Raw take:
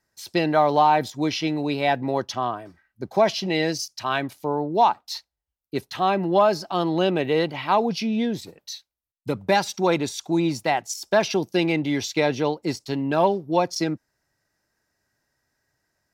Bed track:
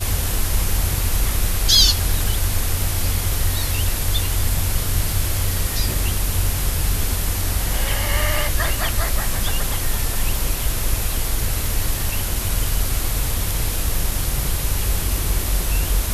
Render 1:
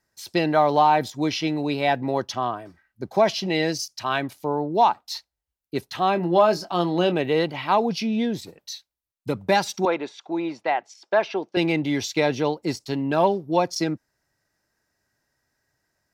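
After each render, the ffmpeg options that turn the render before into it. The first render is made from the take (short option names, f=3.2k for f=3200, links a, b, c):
-filter_complex "[0:a]asettb=1/sr,asplit=3[a][b][c];[a]atrim=end=6.134[d];[b]atrim=start=6.13:end=7.14,asetpts=PTS-STARTPTS,afade=t=in:d=0.004:c=qsin,afade=t=out:st=1.006:d=0.004:c=qsin,asplit=2[e][f];[f]adelay=23,volume=-10dB[g];[e][g]amix=inputs=2:normalize=0,atrim=end_sample=44541[h];[c]atrim=start=7.136[i];[d][h]acrossfade=d=0.004:c1=hsin:c2=qsin[j];[j][i]acrossfade=d=0.004:c1=qsin:c2=hsin,asettb=1/sr,asplit=3[k][l][m];[k]atrim=end=9.854[n];[l]atrim=start=9.85:end=11.57,asetpts=PTS-STARTPTS,afade=t=in:d=0.004:c=qsin,afade=t=out:st=1.716:d=0.004:c=qsin,highpass=390,lowpass=2.4k[o];[m]atrim=start=11.566[p];[n][o]acrossfade=d=0.004:c1=hsin:c2=qsin[q];[q][p]acrossfade=d=0.004:c1=qsin:c2=hsin"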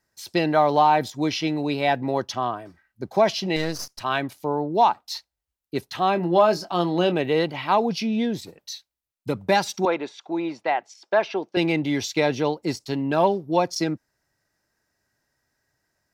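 -filter_complex "[0:a]asettb=1/sr,asplit=3[a][b][c];[a]atrim=end=3.564[d];[b]atrim=start=3.56:end=4.01,asetpts=PTS-STARTPTS,afade=t=in:d=0.004:c=qsin,afade=t=out:st=0.446:d=0.004:c=qsin,aeval=exprs='if(lt(val(0),0),0.251*val(0),val(0))':c=same[e];[c]atrim=start=4.006[f];[d][e]acrossfade=d=0.004:c1=hsin:c2=qsin[g];[g][f]acrossfade=d=0.004:c1=qsin:c2=hsin"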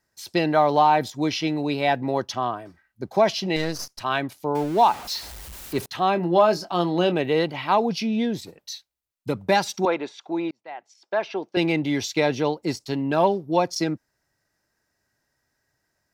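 -filter_complex "[0:a]asettb=1/sr,asplit=3[a][b][c];[a]atrim=end=4.554[d];[b]atrim=start=4.55:end=5.86,asetpts=PTS-STARTPTS,afade=t=in:d=0.004:c=qsin,afade=t=out:st=1.306:d=0.004:c=qsin,aeval=exprs='val(0)+0.5*0.0251*sgn(val(0))':c=same[e];[c]atrim=start=5.856[f];[d][e]acrossfade=d=0.004:c1=hsin:c2=qsin[g];[g][f]acrossfade=d=0.004:c1=qsin:c2=hsin,asplit=2[h][i];[h]atrim=end=10.51,asetpts=PTS-STARTPTS,afade=t=out:st=10.506:d=0.004:c=hsin[j];[i]atrim=start=10.51,asetpts=PTS-STARTPTS,afade=t=in:d=1.07[k];[j][k]concat=n=2:v=0:a=1"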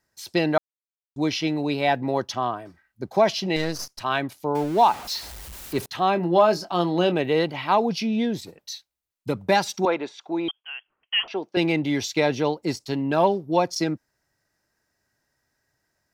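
-filter_complex "[0:a]asettb=1/sr,asplit=3[a][b][c];[a]atrim=end=10.484[d];[b]atrim=start=10.48:end=11.28,asetpts=PTS-STARTPTS,afade=t=in:d=0.004:c=qsin,afade=t=out:st=0.796:d=0.004:c=qsin,lowpass=f=3k:t=q:w=0.5098,lowpass=f=3k:t=q:w=0.6013,lowpass=f=3k:t=q:w=0.9,lowpass=f=3k:t=q:w=2.563,afreqshift=-3500[e];[c]atrim=start=11.276[f];[d][e]acrossfade=d=0.004:c1=hsin:c2=qsin[g];[g][f]acrossfade=d=0.004:c1=qsin:c2=hsin,asplit=3[h][i][j];[h]atrim=end=0.58,asetpts=PTS-STARTPTS,afade=t=out:st=0.576:d=0.004:c=hsin[k];[i]atrim=start=0.58:end=1.16,asetpts=PTS-STARTPTS,volume=0[l];[j]atrim=start=1.16,asetpts=PTS-STARTPTS,afade=t=in:d=0.004:c=hsin[m];[k][l][m]concat=n=3:v=0:a=1"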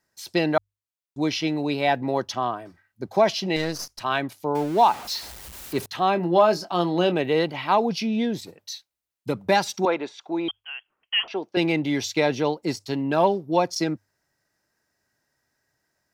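-af "lowshelf=f=64:g=-6.5,bandreject=f=50:t=h:w=6,bandreject=f=100:t=h:w=6"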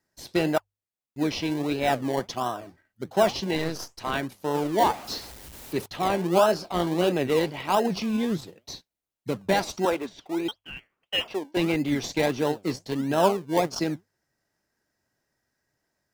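-filter_complex "[0:a]flanger=delay=1.9:depth=9.3:regen=78:speed=1.7:shape=triangular,asplit=2[a][b];[b]acrusher=samples=27:mix=1:aa=0.000001:lfo=1:lforange=16.2:lforate=1.5,volume=-7dB[c];[a][c]amix=inputs=2:normalize=0"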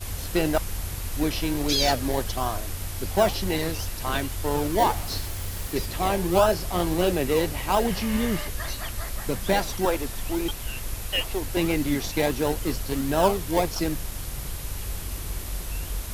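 -filter_complex "[1:a]volume=-11.5dB[a];[0:a][a]amix=inputs=2:normalize=0"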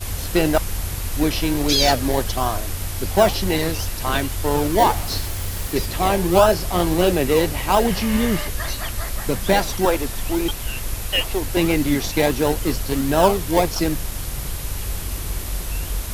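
-af "volume=5.5dB,alimiter=limit=-2dB:level=0:latency=1"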